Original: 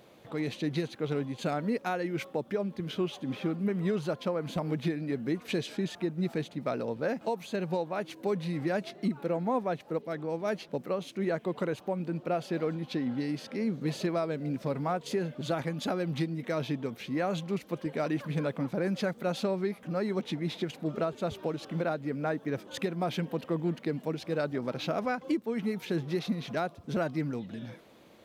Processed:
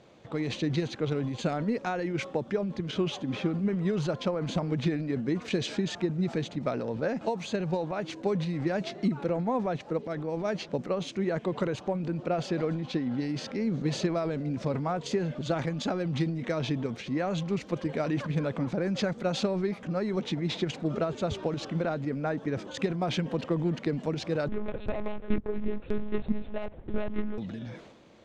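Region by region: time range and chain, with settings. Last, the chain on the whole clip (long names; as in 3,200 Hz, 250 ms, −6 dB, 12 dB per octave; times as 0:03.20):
0:24.48–0:27.38: running median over 41 samples + high-pass filter 150 Hz + one-pitch LPC vocoder at 8 kHz 210 Hz
whole clip: Chebyshev low-pass filter 7,100 Hz, order 3; transient designer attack +4 dB, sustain +8 dB; low-shelf EQ 110 Hz +6 dB; level −1 dB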